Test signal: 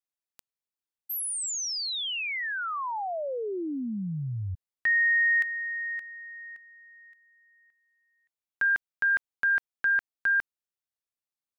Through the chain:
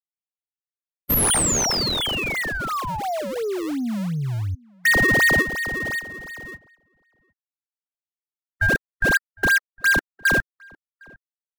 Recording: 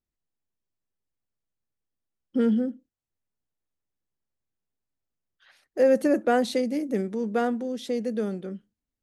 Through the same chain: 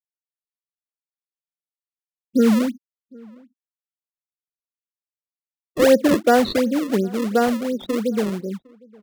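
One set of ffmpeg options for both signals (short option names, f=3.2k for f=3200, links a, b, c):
-filter_complex "[0:a]afftfilt=real='re*gte(hypot(re,im),0.0355)':imag='im*gte(hypot(re,im),0.0355)':win_size=1024:overlap=0.75,highshelf=f=4.6k:g=10,asplit=2[a][b];[b]acrusher=samples=33:mix=1:aa=0.000001:lfo=1:lforange=52.8:lforate=2.8,volume=-3dB[c];[a][c]amix=inputs=2:normalize=0,asplit=2[d][e];[e]adelay=758,volume=-26dB,highshelf=f=4k:g=-17.1[f];[d][f]amix=inputs=2:normalize=0,volume=2.5dB"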